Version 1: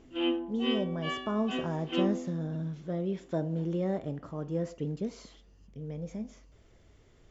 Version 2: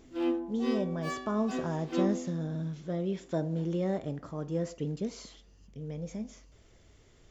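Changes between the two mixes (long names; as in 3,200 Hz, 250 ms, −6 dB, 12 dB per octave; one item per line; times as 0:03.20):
background: remove low-pass with resonance 3,000 Hz, resonance Q 9.5
master: add high-shelf EQ 3,500 Hz +7.5 dB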